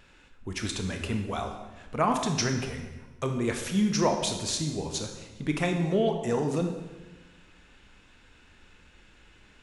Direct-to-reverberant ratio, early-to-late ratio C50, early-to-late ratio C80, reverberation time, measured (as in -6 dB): 4.0 dB, 6.0 dB, 8.0 dB, 1.2 s